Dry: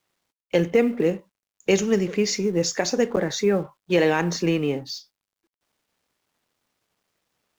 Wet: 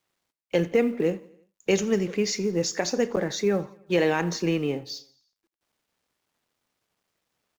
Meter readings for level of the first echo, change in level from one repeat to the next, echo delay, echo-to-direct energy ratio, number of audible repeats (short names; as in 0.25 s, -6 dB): -22.0 dB, -5.0 dB, 85 ms, -20.5 dB, 3